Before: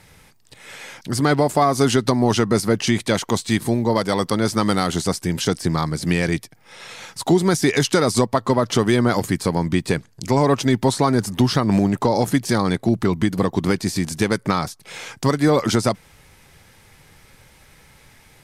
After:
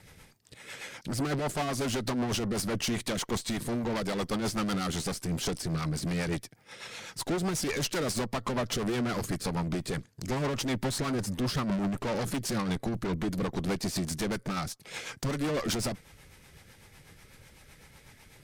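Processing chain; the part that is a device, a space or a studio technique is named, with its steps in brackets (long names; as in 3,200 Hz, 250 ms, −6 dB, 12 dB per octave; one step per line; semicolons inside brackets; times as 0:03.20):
overdriven rotary cabinet (tube saturation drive 26 dB, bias 0.5; rotating-speaker cabinet horn 8 Hz)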